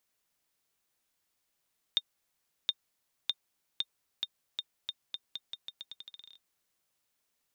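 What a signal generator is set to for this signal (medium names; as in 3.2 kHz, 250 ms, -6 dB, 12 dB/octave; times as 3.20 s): bouncing ball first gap 0.72 s, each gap 0.84, 3.65 kHz, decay 46 ms -14.5 dBFS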